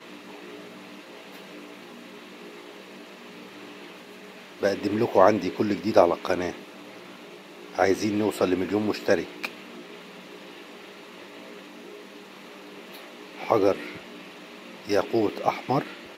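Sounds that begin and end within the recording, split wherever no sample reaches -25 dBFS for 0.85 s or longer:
4.63–6.51
7.79–9.46
13.44–13.75

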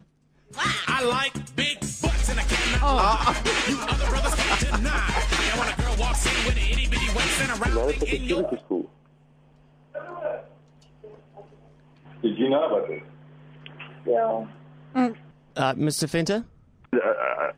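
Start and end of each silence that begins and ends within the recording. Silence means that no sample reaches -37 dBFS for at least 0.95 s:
8.86–9.95

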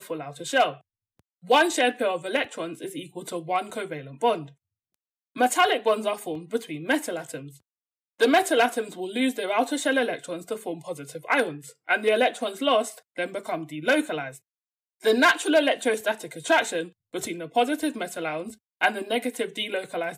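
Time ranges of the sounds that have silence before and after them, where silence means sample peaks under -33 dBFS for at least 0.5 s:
1.5–4.43
5.36–7.39
8.2–14.35

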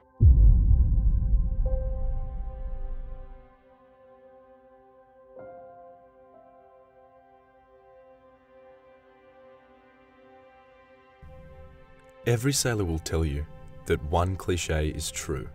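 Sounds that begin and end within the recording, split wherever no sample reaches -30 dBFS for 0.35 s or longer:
12.27–13.44

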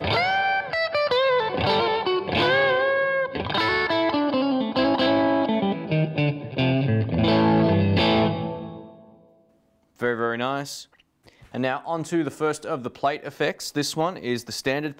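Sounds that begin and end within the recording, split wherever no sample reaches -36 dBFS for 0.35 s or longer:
10.01–10.83

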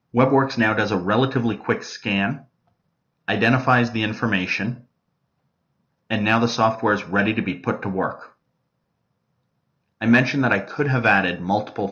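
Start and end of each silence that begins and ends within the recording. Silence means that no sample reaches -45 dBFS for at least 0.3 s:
2.45–3.28
4.84–6.1
8.32–10.01

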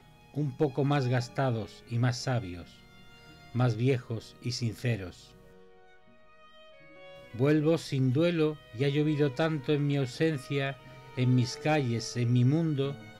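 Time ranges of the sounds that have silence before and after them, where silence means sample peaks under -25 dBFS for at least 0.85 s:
3.56–4.95

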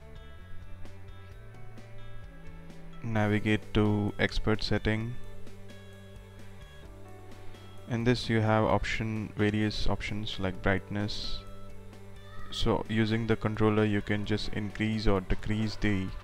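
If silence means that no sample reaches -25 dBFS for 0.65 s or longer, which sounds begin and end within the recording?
3.07–5
7.92–11.34

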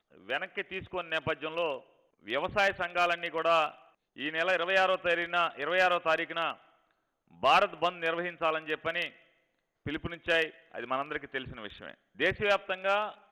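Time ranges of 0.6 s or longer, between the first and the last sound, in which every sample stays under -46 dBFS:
6.56–7.33
9.12–9.86

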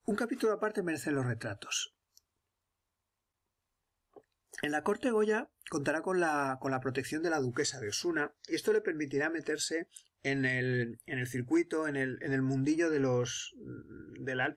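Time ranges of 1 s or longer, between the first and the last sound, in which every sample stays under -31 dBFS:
1.84–4.54

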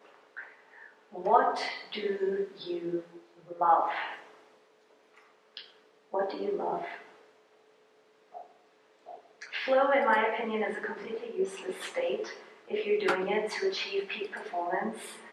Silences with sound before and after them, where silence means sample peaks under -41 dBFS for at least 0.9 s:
4.22–5.57
7.03–8.35

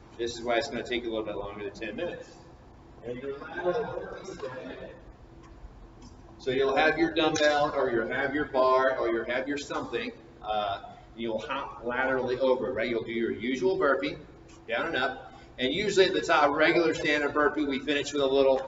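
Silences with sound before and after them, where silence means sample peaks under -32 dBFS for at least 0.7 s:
2.21–3.06
4.85–6.47

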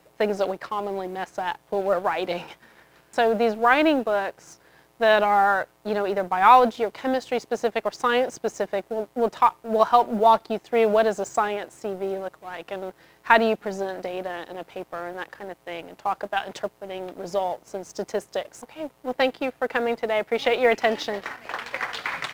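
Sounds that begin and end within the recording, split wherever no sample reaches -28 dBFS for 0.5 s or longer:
3.18–4.3

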